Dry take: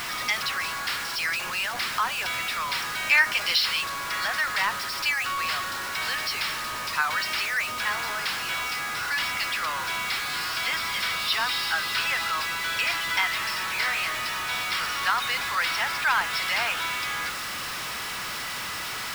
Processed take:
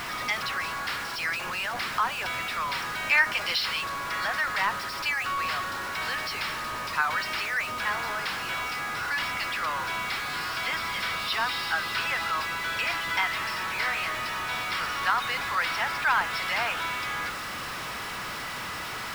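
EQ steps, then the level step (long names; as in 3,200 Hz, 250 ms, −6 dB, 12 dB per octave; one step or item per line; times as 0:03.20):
high-shelf EQ 2,200 Hz −9 dB
+2.0 dB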